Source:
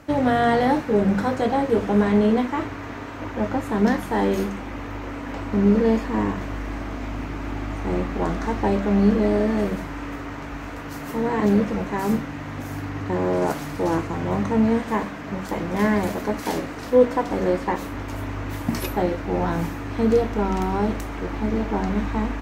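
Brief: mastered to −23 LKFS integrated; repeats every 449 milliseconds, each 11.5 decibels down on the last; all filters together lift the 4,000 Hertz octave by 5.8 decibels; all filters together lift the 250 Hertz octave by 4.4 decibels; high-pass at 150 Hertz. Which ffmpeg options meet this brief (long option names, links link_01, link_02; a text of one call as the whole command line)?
ffmpeg -i in.wav -af "highpass=150,equalizer=frequency=250:width_type=o:gain=6.5,equalizer=frequency=4000:width_type=o:gain=7.5,aecho=1:1:449|898|1347:0.266|0.0718|0.0194,volume=-3dB" out.wav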